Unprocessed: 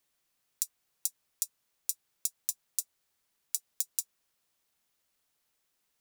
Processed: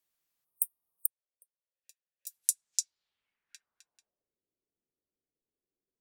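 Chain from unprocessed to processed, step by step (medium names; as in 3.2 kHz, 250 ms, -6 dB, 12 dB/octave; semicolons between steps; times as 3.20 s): spectral noise reduction 13 dB; low-pass sweep 16 kHz -> 390 Hz, 2.24–4.38 s; in parallel at -0.5 dB: compression, threshold -39 dBFS, peak gain reduction 16 dB; 0.45–1.75 s: on the sum: spectral selection erased 1.3–8.5 kHz; 1.06–2.27 s: vowel filter e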